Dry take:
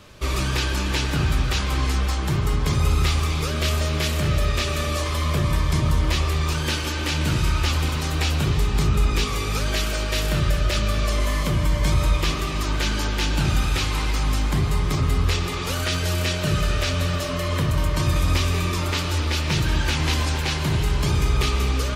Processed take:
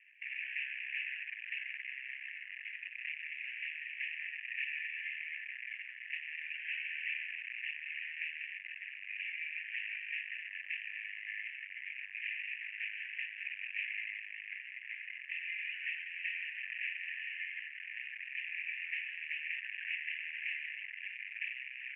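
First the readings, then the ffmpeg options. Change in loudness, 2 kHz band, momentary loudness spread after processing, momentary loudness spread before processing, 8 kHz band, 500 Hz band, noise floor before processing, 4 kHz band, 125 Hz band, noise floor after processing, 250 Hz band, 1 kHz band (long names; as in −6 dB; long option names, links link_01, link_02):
−17.0 dB, −7.0 dB, 5 LU, 3 LU, below −40 dB, below −40 dB, −25 dBFS, −21.5 dB, below −40 dB, −49 dBFS, below −40 dB, below −40 dB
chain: -af "aeval=exprs='(tanh(22.4*val(0)+0.45)-tanh(0.45))/22.4':channel_layout=same,acrusher=bits=7:dc=4:mix=0:aa=0.000001,asuperpass=centerf=2200:order=12:qfactor=2.1,volume=1dB"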